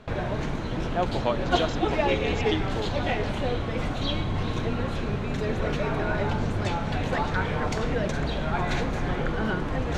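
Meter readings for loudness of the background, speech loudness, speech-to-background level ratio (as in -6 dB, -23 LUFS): -28.0 LUFS, -32.5 LUFS, -4.5 dB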